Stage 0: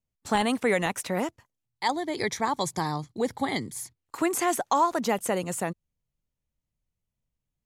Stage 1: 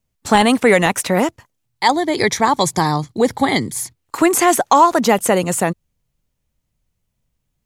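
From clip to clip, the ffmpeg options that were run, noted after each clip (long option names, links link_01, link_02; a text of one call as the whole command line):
ffmpeg -i in.wav -af "acontrast=87,volume=5dB" out.wav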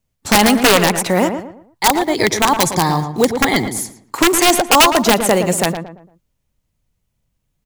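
ffmpeg -i in.wav -filter_complex "[0:a]acrusher=bits=6:mode=log:mix=0:aa=0.000001,aeval=exprs='(mod(1.68*val(0)+1,2)-1)/1.68':channel_layout=same,asplit=2[link_01][link_02];[link_02]adelay=114,lowpass=frequency=1700:poles=1,volume=-7.5dB,asplit=2[link_03][link_04];[link_04]adelay=114,lowpass=frequency=1700:poles=1,volume=0.36,asplit=2[link_05][link_06];[link_06]adelay=114,lowpass=frequency=1700:poles=1,volume=0.36,asplit=2[link_07][link_08];[link_08]adelay=114,lowpass=frequency=1700:poles=1,volume=0.36[link_09];[link_01][link_03][link_05][link_07][link_09]amix=inputs=5:normalize=0,volume=1dB" out.wav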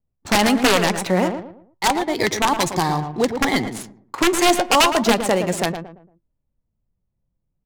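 ffmpeg -i in.wav -af "adynamicsmooth=sensitivity=4.5:basefreq=1000,flanger=delay=2.6:depth=3.1:regen=81:speed=0.34:shape=sinusoidal" out.wav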